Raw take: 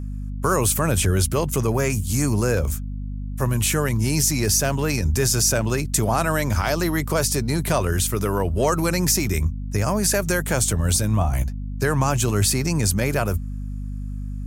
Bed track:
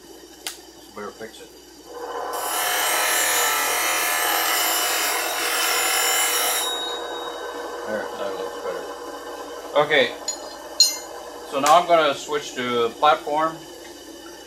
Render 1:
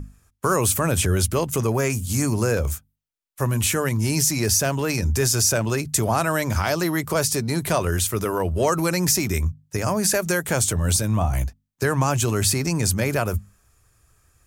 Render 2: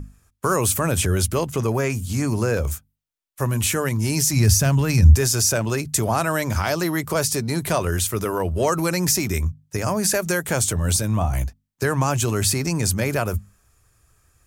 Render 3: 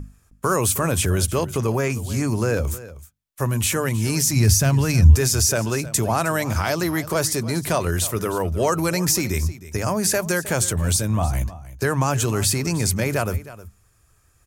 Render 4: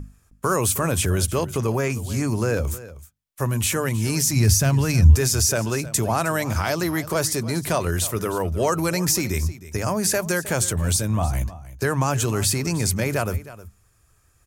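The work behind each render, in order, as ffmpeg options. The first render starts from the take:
-af "bandreject=f=50:t=h:w=6,bandreject=f=100:t=h:w=6,bandreject=f=150:t=h:w=6,bandreject=f=200:t=h:w=6,bandreject=f=250:t=h:w=6"
-filter_complex "[0:a]asettb=1/sr,asplit=3[s0][s1][s2];[s0]atrim=end=1.474[s3];[s1]atrim=start=1.47:end=2.71,asetpts=PTS-STARTPTS,afade=t=in:d=0.004:c=qsin,afade=t=out:st=1.236:d=0.004:c=qsin,acrossover=split=5100[s4][s5];[s5]acompressor=threshold=0.0158:ratio=4:attack=1:release=60[s6];[s4][s6]amix=inputs=2:normalize=0[s7];[s2]atrim=start=2.706[s8];[s3][s7]acrossfade=d=0.004:c1=hsin:c2=qsin[s9];[s9][s8]acrossfade=d=0.004:c1=qsin:c2=hsin,asplit=3[s10][s11][s12];[s10]afade=t=out:st=4.32:d=0.02[s13];[s11]asubboost=boost=5:cutoff=180,afade=t=in:st=4.32:d=0.02,afade=t=out:st=5.14:d=0.02[s14];[s12]afade=t=in:st=5.14:d=0.02[s15];[s13][s14][s15]amix=inputs=3:normalize=0"
-af "aecho=1:1:313:0.15"
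-af "volume=0.891"

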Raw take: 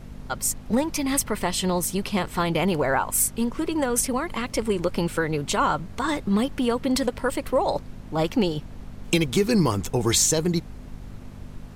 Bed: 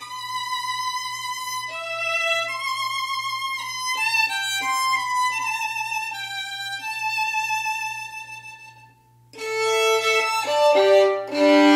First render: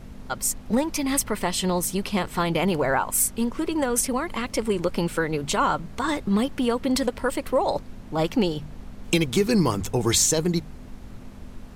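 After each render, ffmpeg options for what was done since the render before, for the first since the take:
-af "bandreject=f=50:t=h:w=4,bandreject=f=100:t=h:w=4,bandreject=f=150:t=h:w=4"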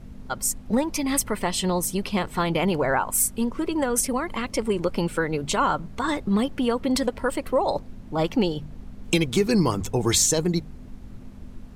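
-af "afftdn=nr=6:nf=-42"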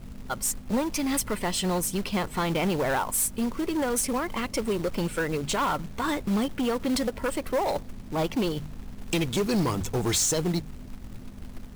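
-af "asoftclip=type=tanh:threshold=0.0891,acrusher=bits=4:mode=log:mix=0:aa=0.000001"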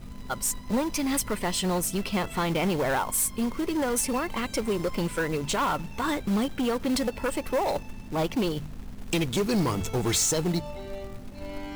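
-filter_complex "[1:a]volume=0.0596[s0];[0:a][s0]amix=inputs=2:normalize=0"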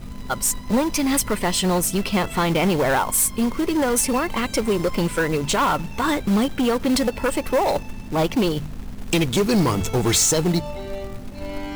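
-af "volume=2.11"

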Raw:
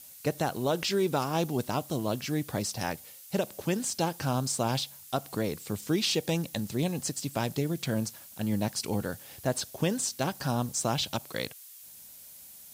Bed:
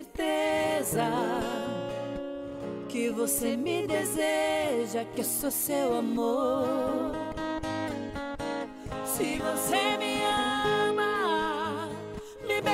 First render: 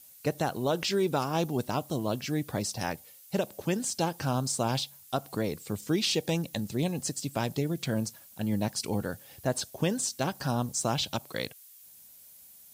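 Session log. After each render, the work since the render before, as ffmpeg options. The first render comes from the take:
-af "afftdn=nr=6:nf=-50"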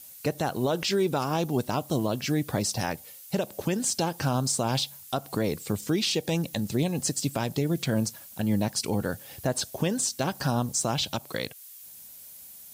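-af "acontrast=66,alimiter=limit=0.15:level=0:latency=1:release=223"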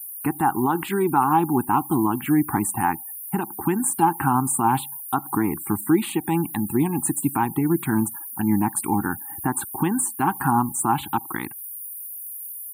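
-af "firequalizer=gain_entry='entry(120,0);entry(330,11);entry(560,-27);entry(810,15);entry(1600,6);entry(5300,-23);entry(9300,12)':delay=0.05:min_phase=1,afftfilt=real='re*gte(hypot(re,im),0.01)':imag='im*gte(hypot(re,im),0.01)':win_size=1024:overlap=0.75"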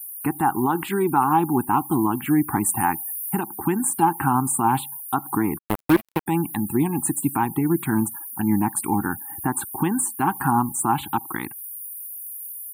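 -filter_complex "[0:a]asettb=1/sr,asplit=3[s0][s1][s2];[s0]atrim=end=2.664[s3];[s1]atrim=start=2.66:end=3.41,asetpts=PTS-STARTPTS,afade=t=in:d=0.004:c=qsin,afade=t=out:st=0.746:d=0.004:c=qsin,highshelf=f=3900:g=5.5[s4];[s2]atrim=start=3.406[s5];[s3][s4]acrossfade=d=0.004:c1=hsin:c2=qsin[s6];[s6][s5]acrossfade=d=0.004:c1=qsin:c2=hsin,asplit=3[s7][s8][s9];[s7]afade=t=out:st=5.57:d=0.02[s10];[s8]acrusher=bits=2:mix=0:aa=0.5,afade=t=in:st=5.57:d=0.02,afade=t=out:st=6.26:d=0.02[s11];[s9]afade=t=in:st=6.26:d=0.02[s12];[s10][s11][s12]amix=inputs=3:normalize=0"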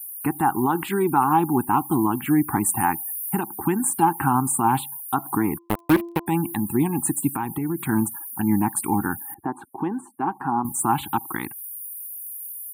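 -filter_complex "[0:a]asettb=1/sr,asplit=3[s0][s1][s2];[s0]atrim=end=5.034[s3];[s1]atrim=start=5.03:end=6.8,asetpts=PTS-STARTPTS,afade=t=in:d=0.004:c=qsin,afade=t=out:st=1.766:d=0.004:c=qsin,bandreject=f=341.4:t=h:w=4,bandreject=f=682.8:t=h:w=4,bandreject=f=1024.2:t=h:w=4[s4];[s2]atrim=start=6.796[s5];[s3][s4]acrossfade=d=0.004:c1=hsin:c2=qsin[s6];[s6][s5]acrossfade=d=0.004:c1=qsin:c2=hsin,asettb=1/sr,asplit=3[s7][s8][s9];[s7]atrim=end=7.344[s10];[s8]atrim=start=7.34:end=7.89,asetpts=PTS-STARTPTS,afade=t=in:d=0.004:c=qsin,afade=t=out:st=0.546:d=0.004:c=qsin,acompressor=threshold=0.0708:ratio=3:attack=3.2:release=140:knee=1:detection=peak[s11];[s9]atrim=start=7.886[s12];[s10][s11]acrossfade=d=0.004:c1=hsin:c2=qsin[s13];[s13][s12]acrossfade=d=0.004:c1=qsin:c2=hsin,asettb=1/sr,asplit=3[s14][s15][s16];[s14]atrim=end=9.344[s17];[s15]atrim=start=9.34:end=10.65,asetpts=PTS-STARTPTS,afade=t=in:d=0.004:c=qsin,afade=t=out:st=1.306:d=0.004:c=qsin,bandpass=f=510:t=q:w=0.86[s18];[s16]atrim=start=10.646[s19];[s17][s18]acrossfade=d=0.004:c1=hsin:c2=qsin[s20];[s20][s19]acrossfade=d=0.004:c1=qsin:c2=hsin"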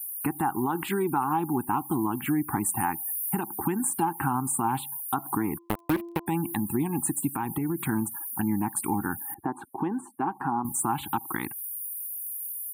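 -af "acompressor=threshold=0.0501:ratio=2.5"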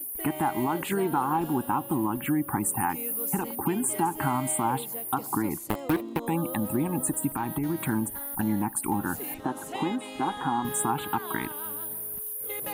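-filter_complex "[1:a]volume=0.282[s0];[0:a][s0]amix=inputs=2:normalize=0"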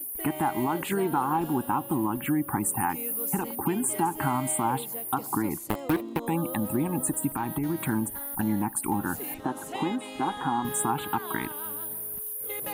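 -af anull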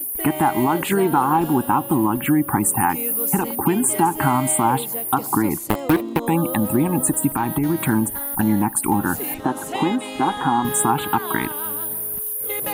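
-af "volume=2.66"

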